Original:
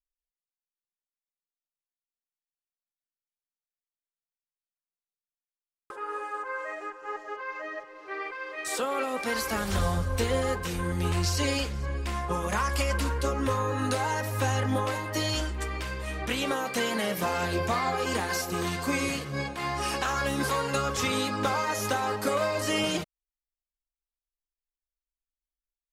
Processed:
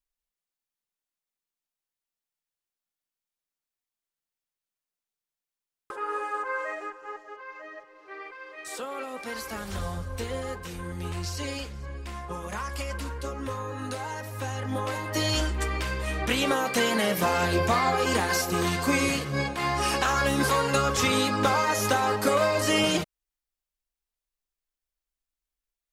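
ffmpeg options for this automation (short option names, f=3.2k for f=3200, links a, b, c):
-af "volume=13.5dB,afade=t=out:st=6.61:d=0.62:silence=0.334965,afade=t=in:st=14.58:d=0.88:silence=0.316228"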